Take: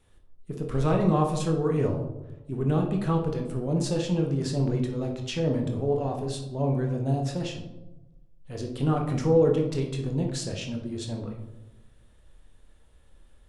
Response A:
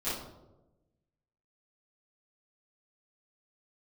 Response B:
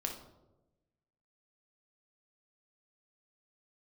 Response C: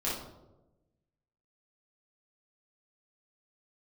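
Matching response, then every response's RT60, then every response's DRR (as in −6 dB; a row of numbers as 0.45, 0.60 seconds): B; 1.0, 1.0, 1.0 seconds; −15.5, 2.0, −8.0 decibels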